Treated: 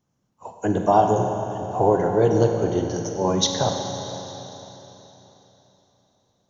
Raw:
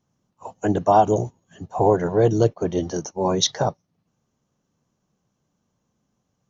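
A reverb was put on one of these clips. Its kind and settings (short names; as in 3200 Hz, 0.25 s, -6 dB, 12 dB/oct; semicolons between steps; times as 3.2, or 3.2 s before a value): Schroeder reverb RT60 3.7 s, combs from 32 ms, DRR 3 dB; gain -1.5 dB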